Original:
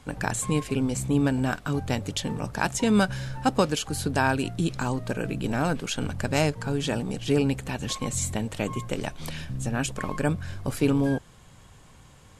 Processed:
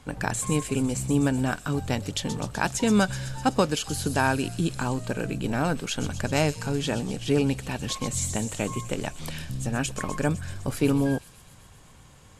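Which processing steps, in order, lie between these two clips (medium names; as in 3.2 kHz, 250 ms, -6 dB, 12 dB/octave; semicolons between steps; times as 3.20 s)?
feedback echo behind a high-pass 126 ms, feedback 71%, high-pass 5.2 kHz, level -6 dB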